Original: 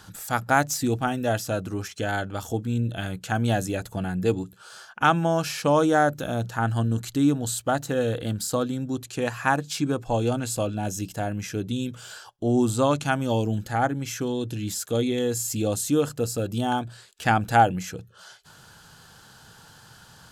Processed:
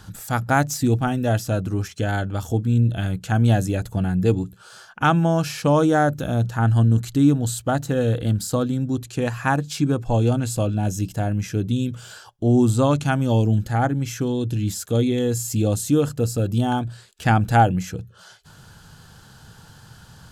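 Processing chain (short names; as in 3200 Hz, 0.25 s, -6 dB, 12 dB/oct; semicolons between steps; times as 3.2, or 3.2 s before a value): low shelf 210 Hz +11.5 dB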